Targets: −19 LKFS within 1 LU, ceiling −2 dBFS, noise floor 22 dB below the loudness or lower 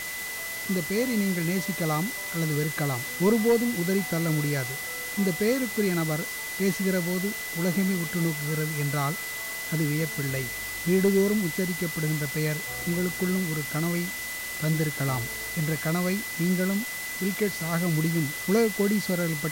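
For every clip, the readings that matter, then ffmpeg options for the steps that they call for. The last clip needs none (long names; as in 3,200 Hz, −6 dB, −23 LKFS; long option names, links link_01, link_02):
interfering tone 2,000 Hz; level of the tone −34 dBFS; background noise floor −34 dBFS; target noise floor −49 dBFS; integrated loudness −27.0 LKFS; sample peak −12.5 dBFS; target loudness −19.0 LKFS
→ -af "bandreject=frequency=2000:width=30"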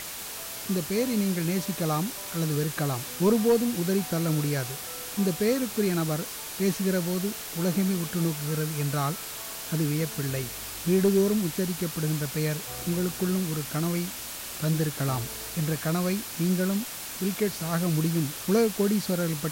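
interfering tone none found; background noise floor −38 dBFS; target noise floor −50 dBFS
→ -af "afftdn=noise_reduction=12:noise_floor=-38"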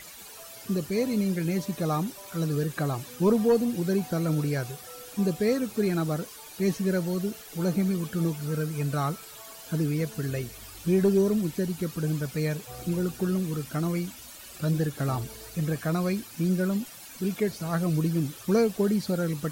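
background noise floor −45 dBFS; target noise floor −50 dBFS
→ -af "afftdn=noise_reduction=6:noise_floor=-45"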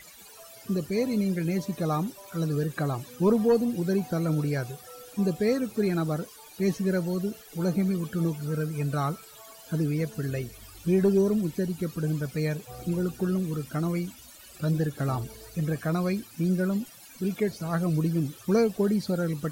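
background noise floor −49 dBFS; target noise floor −50 dBFS
→ -af "afftdn=noise_reduction=6:noise_floor=-49"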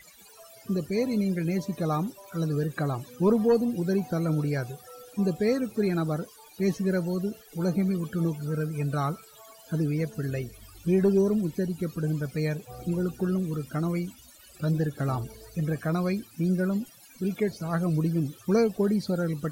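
background noise floor −53 dBFS; integrated loudness −28.0 LKFS; sample peak −14.0 dBFS; target loudness −19.0 LKFS
→ -af "volume=9dB"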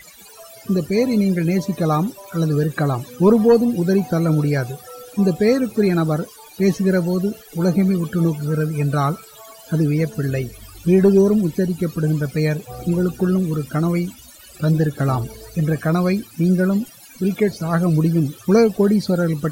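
integrated loudness −19.0 LKFS; sample peak −5.0 dBFS; background noise floor −44 dBFS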